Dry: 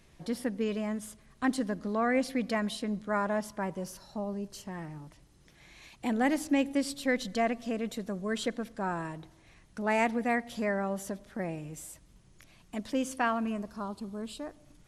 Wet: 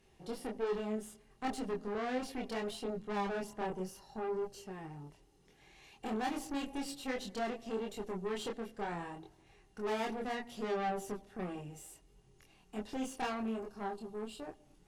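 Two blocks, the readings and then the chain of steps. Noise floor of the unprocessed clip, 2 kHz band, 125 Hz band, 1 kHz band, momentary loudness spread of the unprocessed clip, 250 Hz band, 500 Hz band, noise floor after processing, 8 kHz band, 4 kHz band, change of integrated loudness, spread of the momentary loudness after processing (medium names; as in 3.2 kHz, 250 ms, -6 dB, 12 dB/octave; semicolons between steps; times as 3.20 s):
-60 dBFS, -9.5 dB, -7.0 dB, -5.5 dB, 14 LU, -9.0 dB, -5.0 dB, -66 dBFS, -7.0 dB, -5.0 dB, -7.0 dB, 12 LU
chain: small resonant body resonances 410/790/2800 Hz, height 14 dB, ringing for 60 ms; valve stage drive 29 dB, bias 0.65; chorus voices 2, 0.69 Hz, delay 25 ms, depth 3.1 ms; trim -1 dB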